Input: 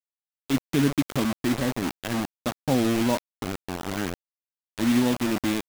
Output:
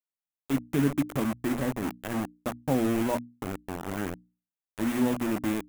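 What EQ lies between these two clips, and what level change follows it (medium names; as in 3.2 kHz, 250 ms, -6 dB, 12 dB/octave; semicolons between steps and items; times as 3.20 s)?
peaking EQ 4.4 kHz -10.5 dB 1.3 oct; hum notches 60/120/180/240/300 Hz; -2.5 dB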